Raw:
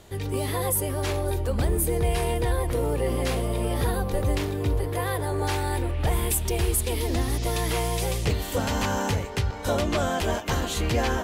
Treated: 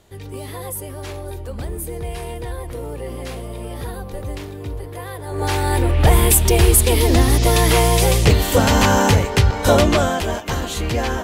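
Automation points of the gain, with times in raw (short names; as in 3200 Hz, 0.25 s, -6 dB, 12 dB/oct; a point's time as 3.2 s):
5.23 s -4 dB
5.43 s +5 dB
5.98 s +11.5 dB
9.82 s +11.5 dB
10.28 s +3 dB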